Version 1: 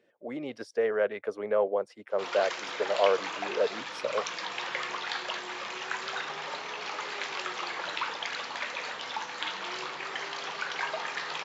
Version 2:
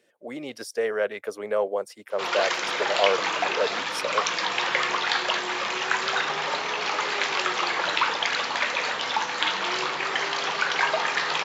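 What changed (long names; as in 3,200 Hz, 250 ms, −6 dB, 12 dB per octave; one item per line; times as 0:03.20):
speech: remove head-to-tape spacing loss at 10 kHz 22 dB
background +9.5 dB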